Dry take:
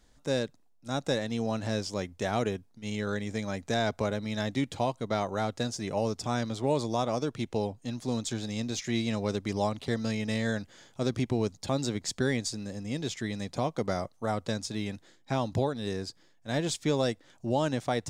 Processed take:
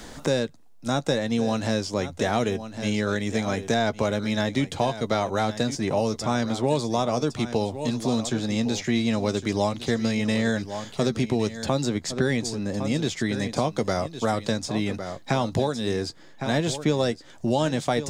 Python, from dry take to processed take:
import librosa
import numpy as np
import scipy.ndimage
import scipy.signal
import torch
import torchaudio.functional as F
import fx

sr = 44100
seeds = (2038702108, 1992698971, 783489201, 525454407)

y = fx.doubler(x, sr, ms=13.0, db=-13.0)
y = y + 10.0 ** (-14.0 / 20.0) * np.pad(y, (int(1108 * sr / 1000.0), 0))[:len(y)]
y = fx.band_squash(y, sr, depth_pct=70)
y = F.gain(torch.from_numpy(y), 5.0).numpy()